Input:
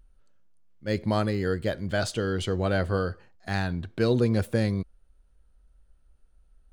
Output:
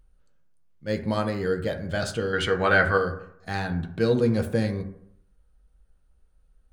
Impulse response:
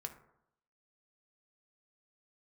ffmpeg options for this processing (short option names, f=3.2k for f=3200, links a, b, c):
-filter_complex "[0:a]asettb=1/sr,asplit=3[a][b][c];[a]atrim=end=2.334[d];[b]atrim=start=2.33:end=2.98,asetpts=PTS-STARTPTS,afade=t=in:d=0.004:c=qsin,afade=t=out:st=0.646:d=0.004:c=qsin,equalizer=f=1.7k:t=o:w=1.7:g=14[e];[c]atrim=start=2.976[f];[d][e]acrossfade=d=0.004:c1=hsin:c2=qsin[g];[g][f]acrossfade=d=0.004:c1=qsin:c2=hsin[h];[1:a]atrim=start_sample=2205,asetrate=48510,aresample=44100[i];[h][i]afir=irnorm=-1:irlink=0,volume=4dB"